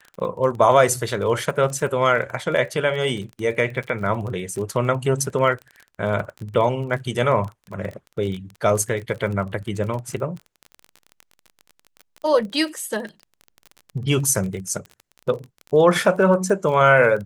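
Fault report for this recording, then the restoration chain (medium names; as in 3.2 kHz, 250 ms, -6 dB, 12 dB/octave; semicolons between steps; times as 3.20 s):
crackle 28 per s -29 dBFS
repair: de-click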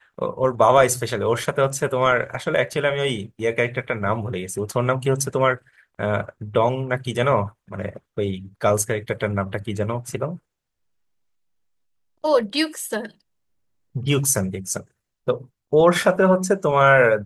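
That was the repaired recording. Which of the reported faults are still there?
nothing left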